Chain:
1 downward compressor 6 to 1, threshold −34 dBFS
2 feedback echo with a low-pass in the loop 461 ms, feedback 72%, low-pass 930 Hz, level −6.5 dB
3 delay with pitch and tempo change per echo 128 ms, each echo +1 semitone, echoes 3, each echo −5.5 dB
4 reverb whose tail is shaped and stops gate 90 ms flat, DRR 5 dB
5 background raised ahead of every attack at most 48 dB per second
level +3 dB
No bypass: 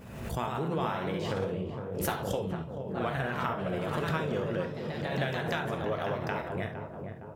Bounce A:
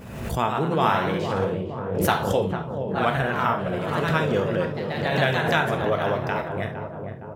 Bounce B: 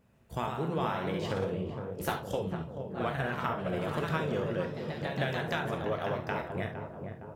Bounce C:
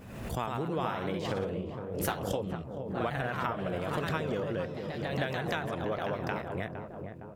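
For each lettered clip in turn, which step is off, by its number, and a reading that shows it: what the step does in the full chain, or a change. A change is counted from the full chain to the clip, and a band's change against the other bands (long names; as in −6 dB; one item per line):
1, change in momentary loudness spread +2 LU
5, 8 kHz band −4.5 dB
4, change in integrated loudness −1.0 LU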